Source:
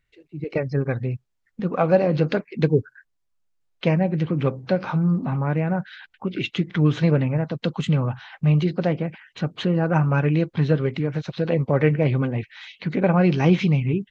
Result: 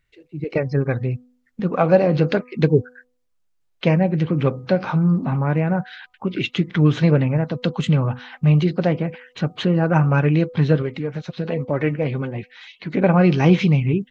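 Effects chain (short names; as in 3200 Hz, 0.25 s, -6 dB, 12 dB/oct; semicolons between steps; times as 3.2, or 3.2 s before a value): 10.82–12.94 flange 1 Hz, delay 2.7 ms, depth 3.1 ms, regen +48%; de-hum 248.6 Hz, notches 5; gain +3 dB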